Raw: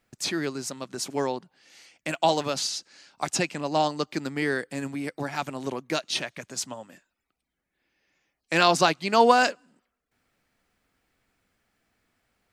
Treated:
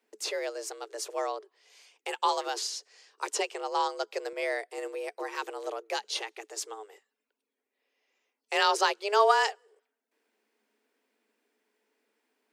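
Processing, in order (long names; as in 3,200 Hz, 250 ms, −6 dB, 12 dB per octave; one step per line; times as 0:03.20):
parametric band 220 Hz +9.5 dB 0.24 octaves
frequency shifter +210 Hz
0:04.33–0:04.78: multiband upward and downward expander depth 40%
level −5 dB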